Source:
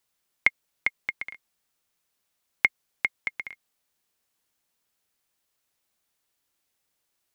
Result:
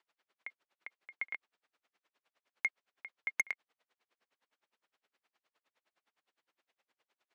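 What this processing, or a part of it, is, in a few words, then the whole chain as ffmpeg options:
helicopter radio: -af "highpass=350,lowpass=2.7k,aeval=exprs='val(0)*pow(10,-34*(0.5-0.5*cos(2*PI*9.7*n/s))/20)':c=same,asoftclip=type=hard:threshold=-32.5dB,volume=10dB"

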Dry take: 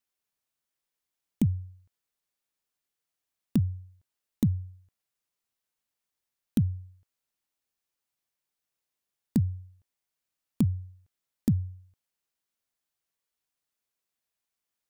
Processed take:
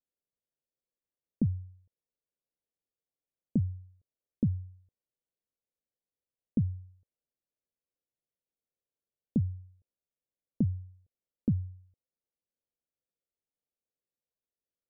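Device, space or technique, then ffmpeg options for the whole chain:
under water: -af "lowpass=f=620:w=0.5412,lowpass=f=620:w=1.3066,equalizer=f=510:t=o:w=0.36:g=6,volume=-3.5dB"

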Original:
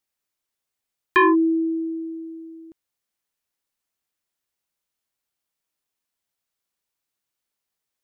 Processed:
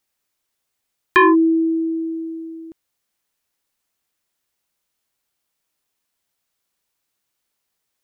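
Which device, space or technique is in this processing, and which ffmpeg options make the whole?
parallel compression: -filter_complex "[0:a]asplit=2[a][b];[b]acompressor=threshold=-29dB:ratio=6,volume=-3.5dB[c];[a][c]amix=inputs=2:normalize=0,volume=2.5dB"

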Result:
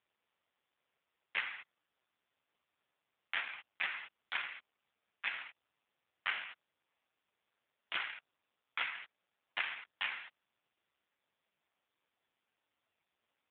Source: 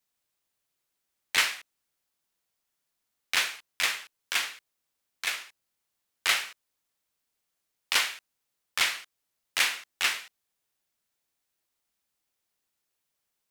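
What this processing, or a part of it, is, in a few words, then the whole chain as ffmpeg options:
voicemail: -af "highpass=360,lowpass=2.8k,acompressor=threshold=-37dB:ratio=12,volume=9dB" -ar 8000 -c:a libopencore_amrnb -b:a 5150

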